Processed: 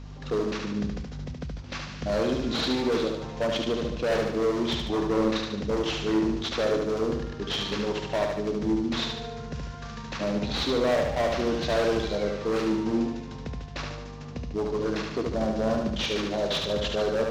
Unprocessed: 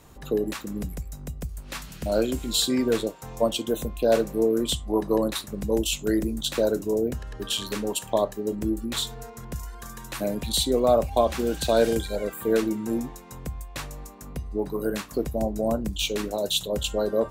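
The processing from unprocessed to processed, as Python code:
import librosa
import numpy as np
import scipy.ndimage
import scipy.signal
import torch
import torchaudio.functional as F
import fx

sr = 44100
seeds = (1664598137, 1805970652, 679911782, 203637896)

p1 = fx.cvsd(x, sr, bps=32000)
p2 = scipy.signal.sosfilt(scipy.signal.butter(2, 70.0, 'highpass', fs=sr, output='sos'), p1)
p3 = np.clip(p2, -10.0 ** (-22.5 / 20.0), 10.0 ** (-22.5 / 20.0))
p4 = fx.add_hum(p3, sr, base_hz=50, snr_db=11)
y = p4 + fx.echo_feedback(p4, sr, ms=73, feedback_pct=53, wet_db=-4.0, dry=0)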